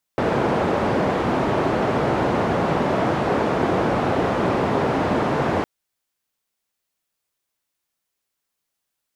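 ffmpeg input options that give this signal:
ffmpeg -f lavfi -i "anoisesrc=color=white:duration=5.46:sample_rate=44100:seed=1,highpass=frequency=100,lowpass=frequency=700,volume=-0.5dB" out.wav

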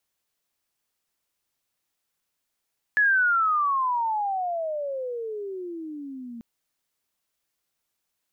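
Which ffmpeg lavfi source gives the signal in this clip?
ffmpeg -f lavfi -i "aevalsrc='pow(10,(-16.5-19*t/3.44)/20)*sin(2*PI*1720*3.44/(-35*log(2)/12)*(exp(-35*log(2)/12*t/3.44)-1))':duration=3.44:sample_rate=44100" out.wav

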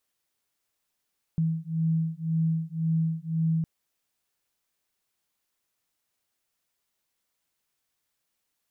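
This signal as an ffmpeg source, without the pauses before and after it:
ffmpeg -f lavfi -i "aevalsrc='0.0447*(sin(2*PI*161*t)+sin(2*PI*162.9*t))':duration=2.26:sample_rate=44100" out.wav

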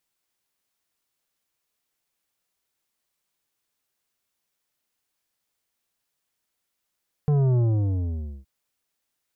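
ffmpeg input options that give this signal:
ffmpeg -f lavfi -i "aevalsrc='0.119*clip((1.17-t)/0.88,0,1)*tanh(3.16*sin(2*PI*150*1.17/log(65/150)*(exp(log(65/150)*t/1.17)-1)))/tanh(3.16)':duration=1.17:sample_rate=44100" out.wav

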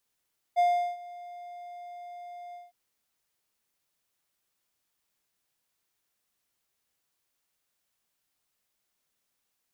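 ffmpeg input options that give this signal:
ffmpeg -f lavfi -i "aevalsrc='0.141*(1-4*abs(mod(705*t+0.25,1)-0.5))':duration=2.159:sample_rate=44100,afade=type=in:duration=0.029,afade=type=out:start_time=0.029:duration=0.376:silence=0.0841,afade=type=out:start_time=1.98:duration=0.179" out.wav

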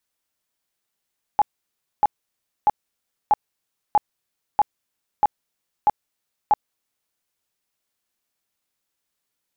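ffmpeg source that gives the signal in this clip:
ffmpeg -f lavfi -i "aevalsrc='0.266*sin(2*PI*838*mod(t,0.64))*lt(mod(t,0.64),23/838)':duration=5.76:sample_rate=44100" out.wav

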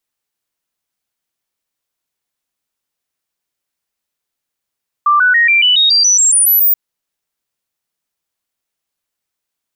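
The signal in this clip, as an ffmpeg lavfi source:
ffmpeg -f lavfi -i "aevalsrc='0.447*clip(min(mod(t,0.14),0.14-mod(t,0.14))/0.005,0,1)*sin(2*PI*1180*pow(2,floor(t/0.14)/3)*mod(t,0.14))':duration=1.68:sample_rate=44100" out.wav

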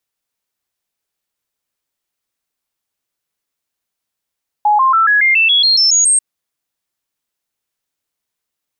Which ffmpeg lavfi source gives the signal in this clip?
ffmpeg -f lavfi -i "aevalsrc='0.398*clip(min(mod(t,0.14),0.14-mod(t,0.14))/0.005,0,1)*sin(2*PI*838*pow(2,floor(t/0.14)/3)*mod(t,0.14))':duration=1.54:sample_rate=44100" out.wav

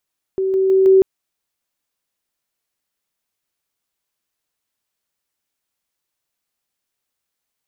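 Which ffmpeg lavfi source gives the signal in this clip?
ffmpeg -f lavfi -i "aevalsrc='pow(10,(-16+3*floor(t/0.16))/20)*sin(2*PI*382*t)':duration=0.64:sample_rate=44100" out.wav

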